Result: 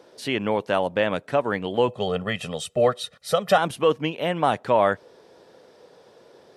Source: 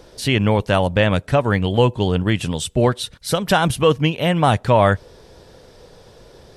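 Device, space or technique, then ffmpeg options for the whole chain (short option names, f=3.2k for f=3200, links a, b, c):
behind a face mask: -filter_complex "[0:a]highpass=270,asettb=1/sr,asplit=3[a][b][c];[a]atrim=end=1.884[d];[b]atrim=start=1.88:end=3.58,asetpts=PTS-STARTPTS,afade=t=in:d=0.004:c=qsin,afade=t=out:st=1.696:d=0.004:c=qsin,aecho=1:1:1.6:0.95,atrim=end_sample=74970[e];[c]atrim=start=3.576[f];[d][e]acrossfade=d=0.004:c1=hsin:c2=qsin[g];[g][f]acrossfade=d=0.004:c1=qsin:c2=hsin,highshelf=f=3k:g=-8,volume=-3.5dB"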